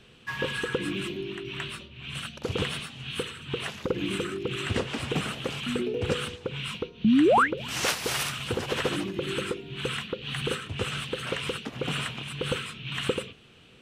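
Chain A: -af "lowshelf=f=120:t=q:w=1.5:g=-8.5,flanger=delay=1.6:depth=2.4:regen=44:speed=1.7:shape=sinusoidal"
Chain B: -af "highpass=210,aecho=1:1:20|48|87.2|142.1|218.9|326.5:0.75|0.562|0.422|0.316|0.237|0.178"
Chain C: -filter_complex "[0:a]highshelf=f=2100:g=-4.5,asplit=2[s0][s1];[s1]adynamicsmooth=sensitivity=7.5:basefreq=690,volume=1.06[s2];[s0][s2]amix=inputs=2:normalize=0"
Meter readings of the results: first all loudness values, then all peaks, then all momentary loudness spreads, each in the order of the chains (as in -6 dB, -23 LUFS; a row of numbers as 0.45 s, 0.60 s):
-33.5 LUFS, -26.5 LUFS, -25.0 LUFS; -13.5 dBFS, -5.0 dBFS, -5.5 dBFS; 9 LU, 8 LU, 10 LU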